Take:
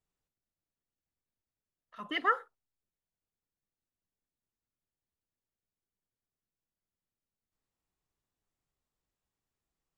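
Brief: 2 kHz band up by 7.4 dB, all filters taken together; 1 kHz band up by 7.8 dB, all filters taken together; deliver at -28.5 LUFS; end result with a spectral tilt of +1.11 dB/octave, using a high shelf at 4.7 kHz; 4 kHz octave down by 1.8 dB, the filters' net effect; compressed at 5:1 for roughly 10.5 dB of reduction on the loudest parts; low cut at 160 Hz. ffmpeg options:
-af "highpass=160,equalizer=f=1000:t=o:g=8.5,equalizer=f=2000:t=o:g=8,equalizer=f=4000:t=o:g=-7.5,highshelf=f=4700:g=-5,acompressor=threshold=0.0501:ratio=5,volume=1.5"

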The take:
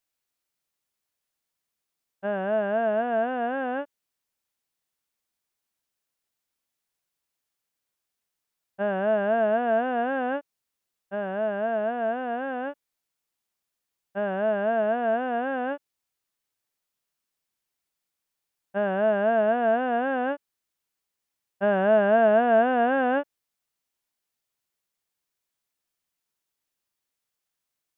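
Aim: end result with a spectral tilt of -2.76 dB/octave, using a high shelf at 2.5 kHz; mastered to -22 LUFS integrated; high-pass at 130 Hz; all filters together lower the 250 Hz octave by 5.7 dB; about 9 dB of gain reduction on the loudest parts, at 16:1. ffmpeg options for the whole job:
-af "highpass=130,equalizer=f=250:t=o:g=-6,highshelf=f=2500:g=4.5,acompressor=threshold=0.0631:ratio=16,volume=2.51"

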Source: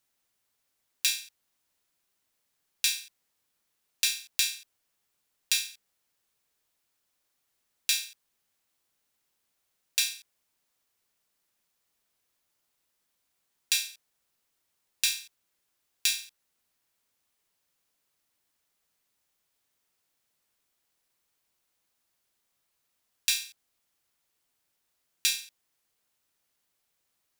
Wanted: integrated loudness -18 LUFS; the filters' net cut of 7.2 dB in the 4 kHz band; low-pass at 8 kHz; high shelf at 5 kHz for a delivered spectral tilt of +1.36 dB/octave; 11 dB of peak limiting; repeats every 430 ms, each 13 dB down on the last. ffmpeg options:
-af "lowpass=8000,equalizer=f=4000:t=o:g=-4,highshelf=f=5000:g=-9,alimiter=level_in=1.26:limit=0.0631:level=0:latency=1,volume=0.794,aecho=1:1:430|860|1290:0.224|0.0493|0.0108,volume=18.8"

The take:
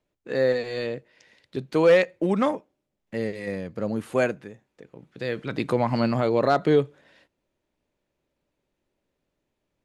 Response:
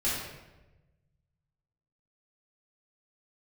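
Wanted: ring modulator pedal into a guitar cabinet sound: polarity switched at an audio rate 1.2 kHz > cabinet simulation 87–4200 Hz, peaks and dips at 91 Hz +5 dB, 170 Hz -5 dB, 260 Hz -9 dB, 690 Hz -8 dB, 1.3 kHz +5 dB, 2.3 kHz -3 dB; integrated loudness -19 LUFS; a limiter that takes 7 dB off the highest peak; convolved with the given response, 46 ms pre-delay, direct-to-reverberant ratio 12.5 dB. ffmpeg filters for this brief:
-filter_complex "[0:a]alimiter=limit=0.168:level=0:latency=1,asplit=2[s0][s1];[1:a]atrim=start_sample=2205,adelay=46[s2];[s1][s2]afir=irnorm=-1:irlink=0,volume=0.0891[s3];[s0][s3]amix=inputs=2:normalize=0,aeval=exprs='val(0)*sgn(sin(2*PI*1200*n/s))':c=same,highpass=87,equalizer=f=91:t=q:w=4:g=5,equalizer=f=170:t=q:w=4:g=-5,equalizer=f=260:t=q:w=4:g=-9,equalizer=f=690:t=q:w=4:g=-8,equalizer=f=1300:t=q:w=4:g=5,equalizer=f=2300:t=q:w=4:g=-3,lowpass=f=4200:w=0.5412,lowpass=f=4200:w=1.3066,volume=2.37"

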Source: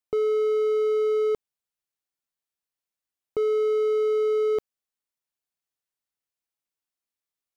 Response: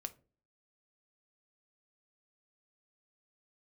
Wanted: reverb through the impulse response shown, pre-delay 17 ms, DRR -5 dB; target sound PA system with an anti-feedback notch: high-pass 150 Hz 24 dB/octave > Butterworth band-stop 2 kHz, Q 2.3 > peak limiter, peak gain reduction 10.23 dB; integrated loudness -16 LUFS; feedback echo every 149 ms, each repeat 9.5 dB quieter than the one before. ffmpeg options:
-filter_complex "[0:a]aecho=1:1:149|298|447|596:0.335|0.111|0.0365|0.012,asplit=2[s0][s1];[1:a]atrim=start_sample=2205,adelay=17[s2];[s1][s2]afir=irnorm=-1:irlink=0,volume=2.51[s3];[s0][s3]amix=inputs=2:normalize=0,highpass=f=150:w=0.5412,highpass=f=150:w=1.3066,asuperstop=centerf=2000:order=8:qfactor=2.3,volume=2.37,alimiter=limit=0.251:level=0:latency=1"

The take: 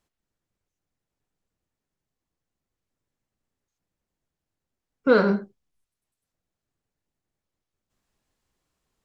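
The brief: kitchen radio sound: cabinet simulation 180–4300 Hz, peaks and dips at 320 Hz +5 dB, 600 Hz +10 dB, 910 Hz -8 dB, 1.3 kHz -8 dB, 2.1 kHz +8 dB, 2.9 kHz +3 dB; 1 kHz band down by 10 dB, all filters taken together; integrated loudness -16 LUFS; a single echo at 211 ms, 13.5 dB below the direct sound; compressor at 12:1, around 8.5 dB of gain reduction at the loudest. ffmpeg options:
-af "equalizer=f=1000:t=o:g=-9,acompressor=threshold=0.0794:ratio=12,highpass=180,equalizer=f=320:t=q:w=4:g=5,equalizer=f=600:t=q:w=4:g=10,equalizer=f=910:t=q:w=4:g=-8,equalizer=f=1300:t=q:w=4:g=-8,equalizer=f=2100:t=q:w=4:g=8,equalizer=f=2900:t=q:w=4:g=3,lowpass=f=4300:w=0.5412,lowpass=f=4300:w=1.3066,aecho=1:1:211:0.211,volume=4.22"

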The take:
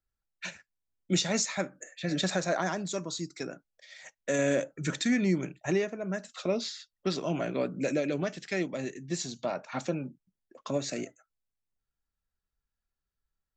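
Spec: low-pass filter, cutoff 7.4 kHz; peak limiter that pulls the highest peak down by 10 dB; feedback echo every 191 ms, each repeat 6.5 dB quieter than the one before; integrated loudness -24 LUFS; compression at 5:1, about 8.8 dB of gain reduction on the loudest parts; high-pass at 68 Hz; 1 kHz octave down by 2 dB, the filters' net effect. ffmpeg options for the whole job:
-af "highpass=68,lowpass=7400,equalizer=f=1000:t=o:g=-3,acompressor=threshold=0.0251:ratio=5,alimiter=level_in=2.37:limit=0.0631:level=0:latency=1,volume=0.422,aecho=1:1:191|382|573|764|955|1146:0.473|0.222|0.105|0.0491|0.0231|0.0109,volume=7.08"

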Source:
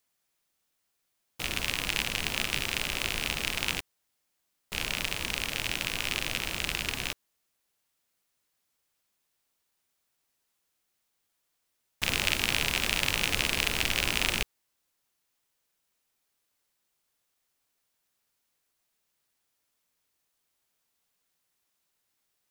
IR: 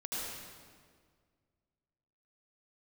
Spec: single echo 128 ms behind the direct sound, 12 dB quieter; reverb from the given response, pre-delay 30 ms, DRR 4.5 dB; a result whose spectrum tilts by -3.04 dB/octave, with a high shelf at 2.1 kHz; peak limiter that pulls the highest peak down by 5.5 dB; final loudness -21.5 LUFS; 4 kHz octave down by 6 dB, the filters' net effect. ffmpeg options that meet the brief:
-filter_complex "[0:a]highshelf=f=2100:g=-3,equalizer=f=4000:t=o:g=-5.5,alimiter=limit=0.211:level=0:latency=1,aecho=1:1:128:0.251,asplit=2[s0][s1];[1:a]atrim=start_sample=2205,adelay=30[s2];[s1][s2]afir=irnorm=-1:irlink=0,volume=0.422[s3];[s0][s3]amix=inputs=2:normalize=0,volume=3.76"

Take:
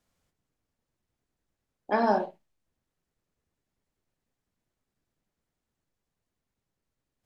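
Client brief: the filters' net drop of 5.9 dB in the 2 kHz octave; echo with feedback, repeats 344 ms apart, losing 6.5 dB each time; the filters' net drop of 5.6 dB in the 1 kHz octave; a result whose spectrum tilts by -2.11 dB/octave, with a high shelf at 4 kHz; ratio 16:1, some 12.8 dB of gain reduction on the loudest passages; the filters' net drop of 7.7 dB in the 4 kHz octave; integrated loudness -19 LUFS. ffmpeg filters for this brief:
-af "equalizer=f=1000:t=o:g=-6.5,equalizer=f=2000:t=o:g=-3,highshelf=f=4000:g=-6,equalizer=f=4000:t=o:g=-5,acompressor=threshold=0.0178:ratio=16,aecho=1:1:344|688|1032|1376|1720|2064:0.473|0.222|0.105|0.0491|0.0231|0.0109,volume=18.8"

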